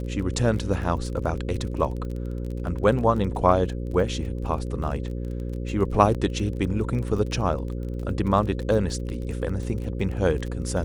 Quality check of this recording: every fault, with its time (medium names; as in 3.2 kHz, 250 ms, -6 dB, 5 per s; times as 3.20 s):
buzz 60 Hz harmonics 9 -30 dBFS
crackle 26 per s -32 dBFS
6.14–6.15 s: dropout 7.7 ms